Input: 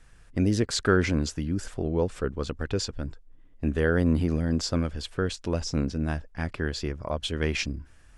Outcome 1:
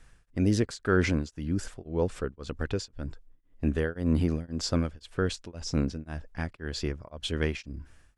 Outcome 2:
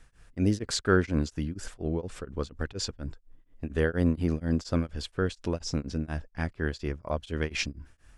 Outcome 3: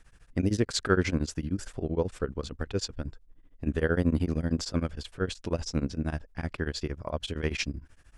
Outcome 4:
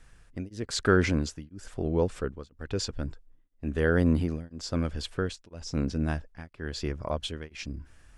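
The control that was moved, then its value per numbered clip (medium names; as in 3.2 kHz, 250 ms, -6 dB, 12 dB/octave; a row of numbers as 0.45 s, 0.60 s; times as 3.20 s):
tremolo of two beating tones, nulls at: 1.9 Hz, 4.2 Hz, 13 Hz, 1 Hz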